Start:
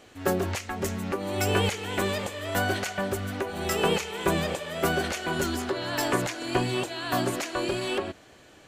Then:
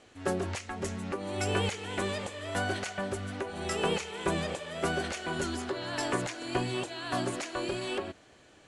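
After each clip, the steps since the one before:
Butterworth low-pass 11,000 Hz 96 dB per octave
level −5 dB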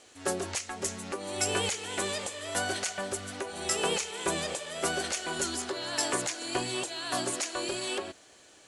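bass and treble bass −8 dB, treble +11 dB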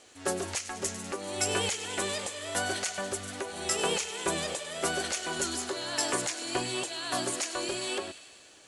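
delay with a high-pass on its return 99 ms, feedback 70%, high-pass 2,100 Hz, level −12.5 dB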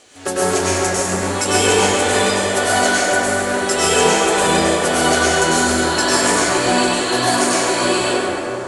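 convolution reverb RT60 3.9 s, pre-delay 90 ms, DRR −10 dB
level +7 dB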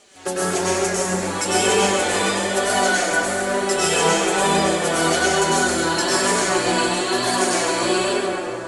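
flanger 1.1 Hz, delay 4.9 ms, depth 1.2 ms, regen +19%

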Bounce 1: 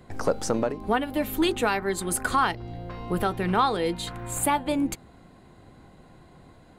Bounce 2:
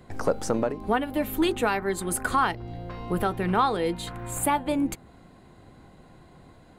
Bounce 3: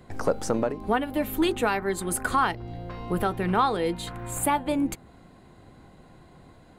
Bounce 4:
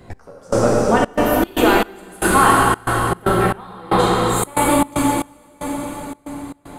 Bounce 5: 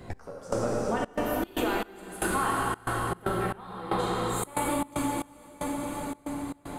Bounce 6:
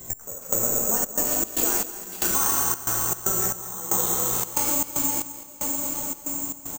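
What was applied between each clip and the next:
dynamic equaliser 4,900 Hz, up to −4 dB, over −45 dBFS, Q 0.77
no processing that can be heard
dense smooth reverb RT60 4.8 s, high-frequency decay 0.9×, DRR −6 dB; gate pattern "x...xxxx.xx.x" 115 BPM −24 dB; level +5.5 dB
downward compressor 2.5 to 1, threshold −30 dBFS, peak gain reduction 14 dB; level −1.5 dB
single-tap delay 214 ms −14 dB; bad sample-rate conversion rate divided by 6×, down none, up zero stuff; level −3 dB

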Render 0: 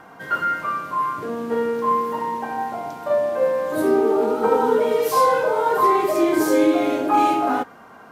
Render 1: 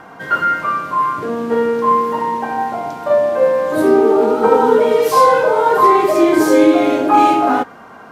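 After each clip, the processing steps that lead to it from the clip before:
high-shelf EQ 11,000 Hz −9 dB
level +6.5 dB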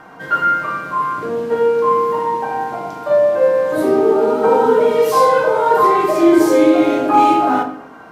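rectangular room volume 140 cubic metres, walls mixed, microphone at 0.52 metres
level −3 dB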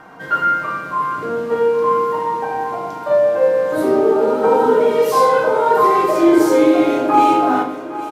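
repeating echo 810 ms, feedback 51%, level −15 dB
level −1 dB

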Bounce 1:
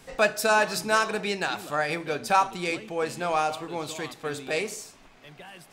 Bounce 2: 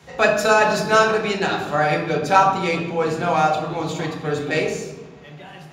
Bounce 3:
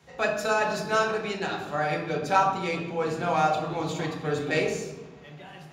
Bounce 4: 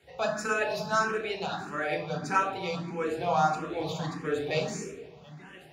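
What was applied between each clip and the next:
in parallel at −11.5 dB: slack as between gear wheels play −27 dBFS; on the sum: convolution reverb RT60 1.2 s, pre-delay 3 ms, DRR −1 dB; level −3.5 dB
speech leveller 2 s; level −8 dB
frequency shifter mixed with the dry sound +1.6 Hz

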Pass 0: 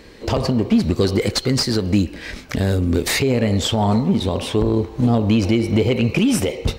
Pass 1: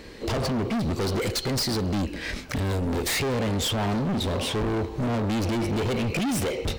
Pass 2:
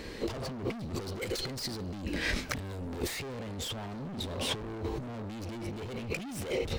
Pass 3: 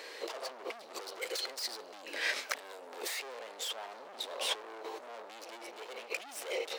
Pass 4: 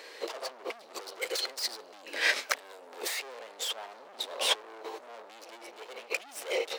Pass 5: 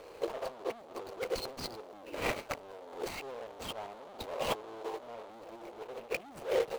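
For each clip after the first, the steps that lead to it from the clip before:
hard clipping −24 dBFS, distortion −5 dB
compressor whose output falls as the input rises −30 dBFS, ratio −0.5; level −4.5 dB
high-pass filter 500 Hz 24 dB per octave
expander for the loud parts 1.5 to 1, over −48 dBFS; level +7.5 dB
running median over 25 samples; level +3 dB

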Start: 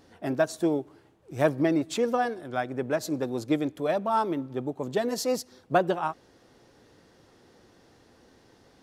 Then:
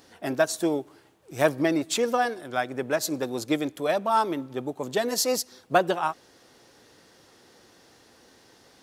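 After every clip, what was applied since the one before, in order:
spectral tilt +2 dB per octave
level +3 dB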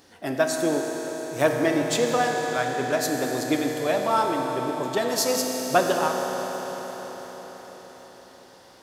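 convolution reverb RT60 5.3 s, pre-delay 9 ms, DRR 1 dB
feedback echo with a swinging delay time 333 ms, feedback 69%, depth 151 cents, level −22 dB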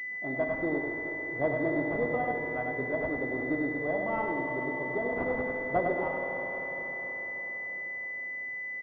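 single-tap delay 100 ms −5.5 dB
switching amplifier with a slow clock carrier 2,000 Hz
level −7 dB

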